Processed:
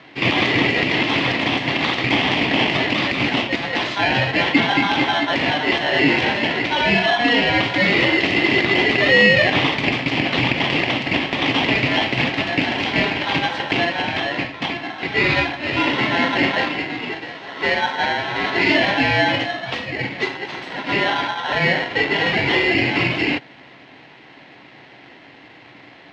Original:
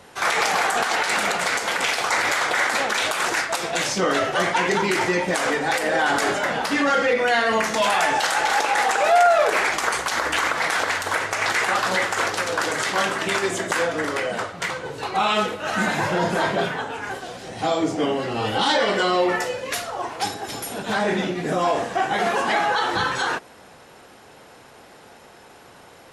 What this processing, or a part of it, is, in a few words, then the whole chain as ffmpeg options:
ring modulator pedal into a guitar cabinet: -af "aeval=exprs='val(0)*sgn(sin(2*PI*1200*n/s))':c=same,highpass=110,equalizer=f=130:t=q:w=4:g=8,equalizer=f=280:t=q:w=4:g=8,equalizer=f=470:t=q:w=4:g=-4,equalizer=f=1500:t=q:w=4:g=-6,equalizer=f=2100:t=q:w=4:g=3,lowpass=f=3700:w=0.5412,lowpass=f=3700:w=1.3066,volume=1.5"

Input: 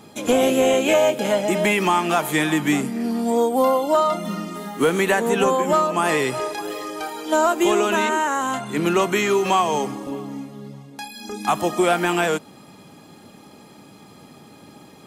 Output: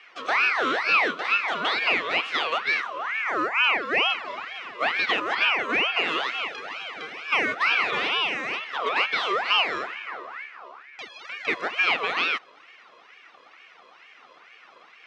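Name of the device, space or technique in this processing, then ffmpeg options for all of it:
voice changer toy: -af "aeval=exprs='val(0)*sin(2*PI*1400*n/s+1400*0.45/2.2*sin(2*PI*2.2*n/s))':c=same,highpass=420,equalizer=f=590:t=q:w=4:g=-6,equalizer=f=890:t=q:w=4:g=-5,equalizer=f=1600:t=q:w=4:g=-7,equalizer=f=2700:t=q:w=4:g=3,equalizer=f=4400:t=q:w=4:g=-4,lowpass=f=4500:w=0.5412,lowpass=f=4500:w=1.3066"

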